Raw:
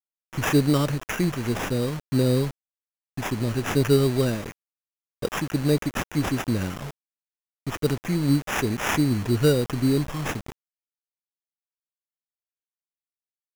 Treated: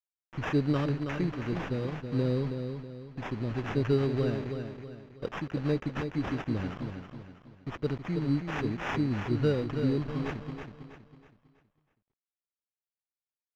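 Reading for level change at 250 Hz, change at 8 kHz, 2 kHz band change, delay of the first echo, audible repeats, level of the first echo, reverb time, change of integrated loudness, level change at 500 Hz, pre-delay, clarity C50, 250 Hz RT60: −6.5 dB, below −20 dB, −8.0 dB, 323 ms, 4, −7.0 dB, no reverb audible, −7.0 dB, −6.5 dB, no reverb audible, no reverb audible, no reverb audible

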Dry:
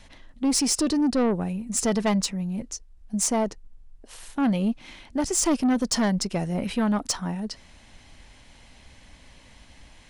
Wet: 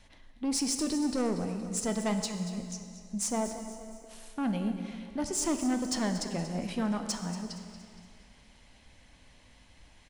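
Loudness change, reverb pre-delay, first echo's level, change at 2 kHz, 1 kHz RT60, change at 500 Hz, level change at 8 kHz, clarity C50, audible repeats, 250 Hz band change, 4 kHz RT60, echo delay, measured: −7.0 dB, 6 ms, −13.5 dB, −7.0 dB, 2.3 s, −7.0 dB, −7.0 dB, 7.0 dB, 4, −7.0 dB, 2.1 s, 234 ms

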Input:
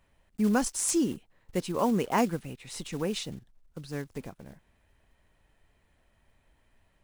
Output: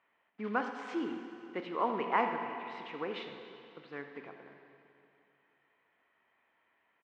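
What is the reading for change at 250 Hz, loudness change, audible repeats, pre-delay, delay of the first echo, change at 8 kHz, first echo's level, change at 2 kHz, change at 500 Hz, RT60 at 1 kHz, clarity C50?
−11.0 dB, −6.5 dB, 1, 21 ms, 82 ms, below −35 dB, −14.0 dB, 0.0 dB, −5.5 dB, 2.8 s, 5.5 dB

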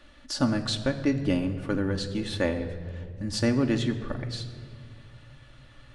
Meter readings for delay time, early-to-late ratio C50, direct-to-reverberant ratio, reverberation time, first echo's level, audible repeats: no echo audible, 11.0 dB, 2.5 dB, 2.0 s, no echo audible, no echo audible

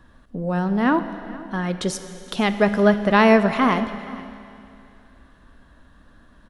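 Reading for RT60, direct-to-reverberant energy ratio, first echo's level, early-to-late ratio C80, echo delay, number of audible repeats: 2.6 s, 9.5 dB, −20.0 dB, 11.0 dB, 470 ms, 1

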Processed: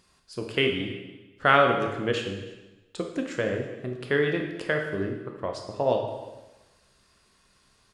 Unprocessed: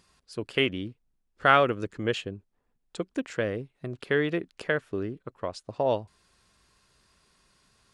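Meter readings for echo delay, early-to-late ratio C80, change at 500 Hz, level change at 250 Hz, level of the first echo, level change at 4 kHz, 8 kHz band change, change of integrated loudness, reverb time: 325 ms, 7.5 dB, +2.0 dB, +1.5 dB, −22.0 dB, +2.0 dB, +2.0 dB, +1.5 dB, 1.1 s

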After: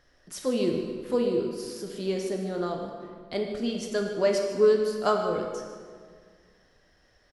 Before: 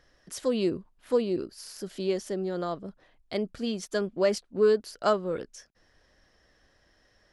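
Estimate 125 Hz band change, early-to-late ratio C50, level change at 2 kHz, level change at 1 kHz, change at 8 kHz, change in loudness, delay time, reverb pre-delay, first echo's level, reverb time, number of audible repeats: +1.5 dB, 3.5 dB, +1.0 dB, +2.0 dB, +1.0 dB, +1.5 dB, 152 ms, 5 ms, −13.5 dB, 1.9 s, 1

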